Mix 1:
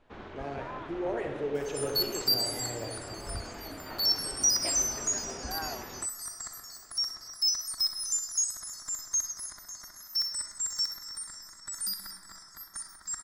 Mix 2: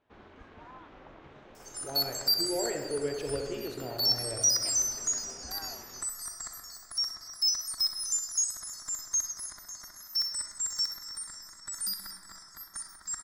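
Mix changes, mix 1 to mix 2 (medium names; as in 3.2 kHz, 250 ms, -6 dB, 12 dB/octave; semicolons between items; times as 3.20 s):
speech: entry +1.50 s; first sound -8.5 dB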